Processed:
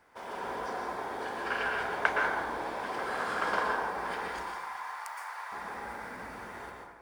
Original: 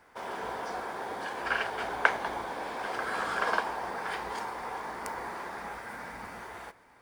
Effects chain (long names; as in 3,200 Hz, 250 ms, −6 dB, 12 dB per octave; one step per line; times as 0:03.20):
0:04.28–0:05.52: high-pass filter 850 Hz 24 dB per octave
dense smooth reverb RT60 1.2 s, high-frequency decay 0.4×, pre-delay 105 ms, DRR −1 dB
level −4 dB